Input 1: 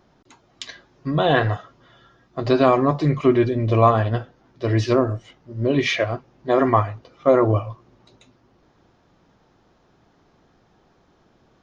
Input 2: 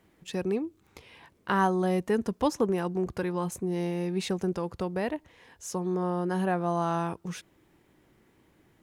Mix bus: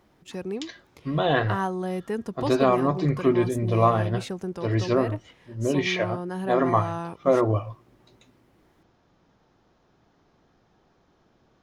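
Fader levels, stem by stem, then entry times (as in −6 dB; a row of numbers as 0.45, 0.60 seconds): −4.5, −3.0 decibels; 0.00, 0.00 seconds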